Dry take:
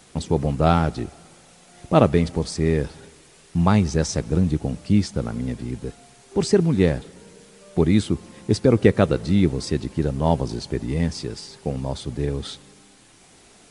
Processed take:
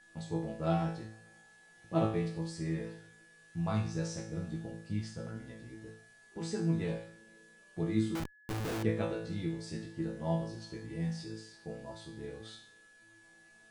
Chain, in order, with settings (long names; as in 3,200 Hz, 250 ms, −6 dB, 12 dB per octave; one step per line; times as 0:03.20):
resonators tuned to a chord A2 fifth, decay 0.54 s
0:08.15–0:08.83: comparator with hysteresis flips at −40 dBFS
steady tone 1,700 Hz −59 dBFS